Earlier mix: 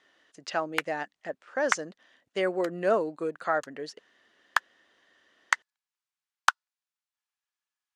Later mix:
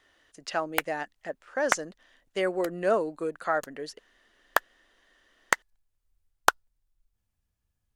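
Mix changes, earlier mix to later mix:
background: remove high-pass filter 940 Hz 24 dB per octave
master: remove low-pass filter 7,100 Hz 12 dB per octave

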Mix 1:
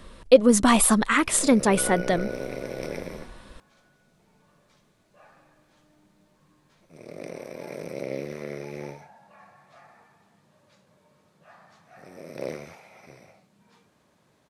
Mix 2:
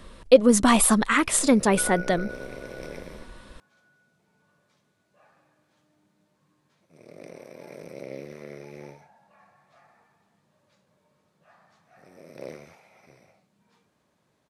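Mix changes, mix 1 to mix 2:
first sound −6.0 dB
second sound: add four-pole ladder band-pass 1,600 Hz, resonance 80%

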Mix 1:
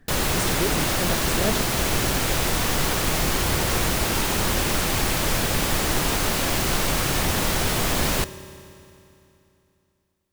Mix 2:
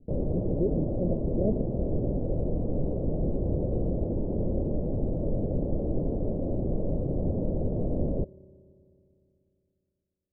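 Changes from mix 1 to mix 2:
background: send −9.5 dB
master: add elliptic low-pass filter 580 Hz, stop band 70 dB

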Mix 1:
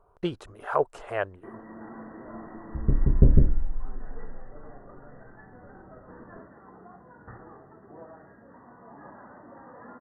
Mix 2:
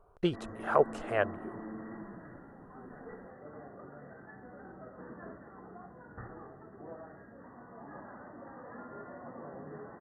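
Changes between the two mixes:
first sound: entry −1.10 s
second sound: muted
master: add parametric band 960 Hz −4.5 dB 0.28 octaves

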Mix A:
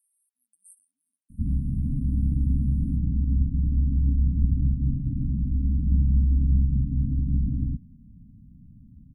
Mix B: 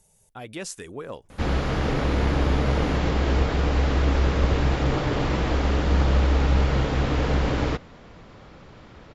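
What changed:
speech: remove four-pole ladder high-pass 880 Hz, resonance 40%
master: remove linear-phase brick-wall band-stop 280–8,300 Hz

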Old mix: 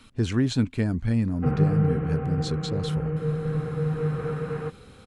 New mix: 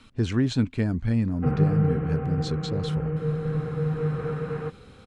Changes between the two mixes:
speech: add high-shelf EQ 9,100 Hz +4.5 dB
master: add high-frequency loss of the air 60 metres

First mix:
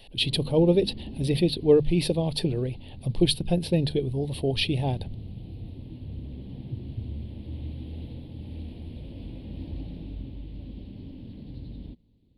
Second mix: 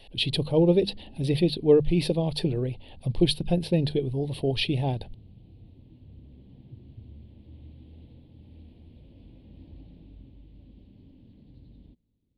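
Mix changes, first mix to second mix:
background −11.5 dB
master: add high-shelf EQ 7,000 Hz −7.5 dB

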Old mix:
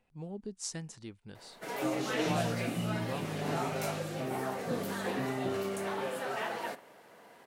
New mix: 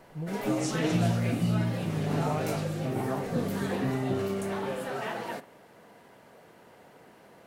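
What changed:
background: entry −1.35 s
master: add low-shelf EQ 240 Hz +12 dB

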